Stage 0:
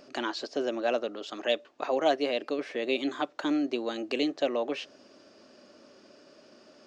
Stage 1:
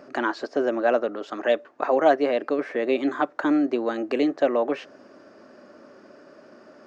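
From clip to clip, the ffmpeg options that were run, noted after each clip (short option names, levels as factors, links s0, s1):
-af "highpass=73,highshelf=f=2300:t=q:w=1.5:g=-9.5,volume=2.11"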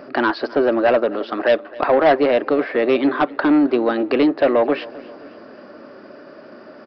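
-af "aresample=11025,asoftclip=type=tanh:threshold=0.15,aresample=44100,aecho=1:1:264|528|792|1056:0.0944|0.051|0.0275|0.0149,volume=2.66"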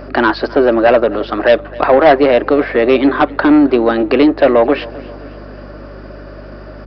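-af "aeval=exprs='val(0)+0.0112*(sin(2*PI*50*n/s)+sin(2*PI*2*50*n/s)/2+sin(2*PI*3*50*n/s)/3+sin(2*PI*4*50*n/s)/4+sin(2*PI*5*50*n/s)/5)':c=same,volume=2"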